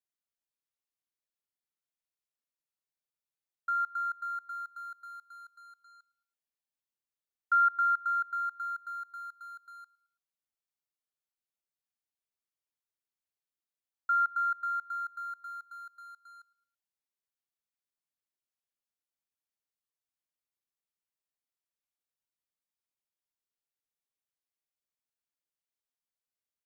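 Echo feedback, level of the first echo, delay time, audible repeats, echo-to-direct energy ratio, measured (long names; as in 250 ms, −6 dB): 41%, −23.0 dB, 110 ms, 2, −22.0 dB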